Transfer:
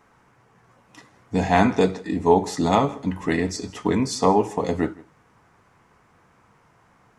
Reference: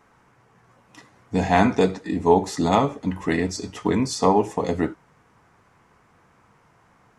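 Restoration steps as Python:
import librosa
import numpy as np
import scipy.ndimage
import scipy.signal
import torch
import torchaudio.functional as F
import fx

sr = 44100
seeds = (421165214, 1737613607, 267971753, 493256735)

y = fx.fix_echo_inverse(x, sr, delay_ms=162, level_db=-22.5)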